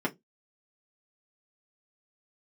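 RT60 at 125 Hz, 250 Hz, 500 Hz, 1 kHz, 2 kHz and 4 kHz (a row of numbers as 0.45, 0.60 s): 0.30, 0.25, 0.20, 0.15, 0.15, 0.15 s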